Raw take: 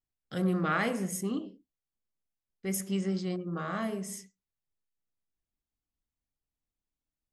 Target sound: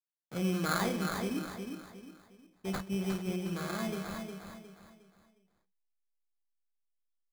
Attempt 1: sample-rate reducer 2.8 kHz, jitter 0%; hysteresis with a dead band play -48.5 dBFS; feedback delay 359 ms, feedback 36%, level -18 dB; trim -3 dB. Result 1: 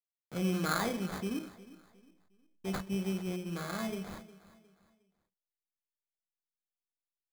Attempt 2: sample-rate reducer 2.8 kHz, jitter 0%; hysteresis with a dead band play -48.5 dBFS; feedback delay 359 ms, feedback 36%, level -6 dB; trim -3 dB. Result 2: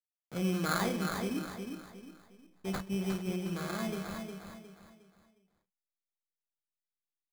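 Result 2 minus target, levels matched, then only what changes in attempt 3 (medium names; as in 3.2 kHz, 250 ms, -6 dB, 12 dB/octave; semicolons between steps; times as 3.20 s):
hysteresis with a dead band: distortion +9 dB
change: hysteresis with a dead band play -58 dBFS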